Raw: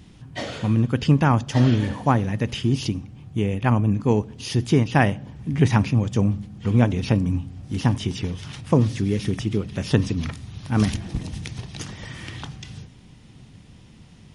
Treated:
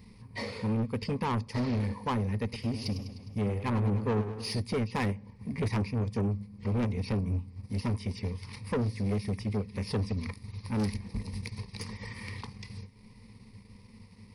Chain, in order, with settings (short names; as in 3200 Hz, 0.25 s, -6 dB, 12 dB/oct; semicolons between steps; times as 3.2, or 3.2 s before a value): ripple EQ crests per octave 0.9, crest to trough 15 dB; transient shaper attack -1 dB, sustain -7 dB; soft clip -18.5 dBFS, distortion -8 dB; 2.43–4.6 warbling echo 0.102 s, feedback 63%, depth 94 cents, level -10 dB; gain -7 dB